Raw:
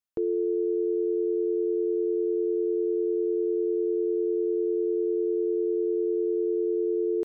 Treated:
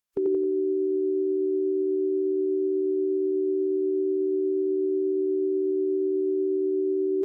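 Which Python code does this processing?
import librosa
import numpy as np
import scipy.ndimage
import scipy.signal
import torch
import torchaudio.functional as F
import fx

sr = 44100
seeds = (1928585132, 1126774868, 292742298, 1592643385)

y = fx.echo_feedback(x, sr, ms=88, feedback_pct=32, wet_db=-3.0)
y = fx.pitch_keep_formants(y, sr, semitones=-2.5)
y = F.gain(torch.from_numpy(y), 3.5).numpy()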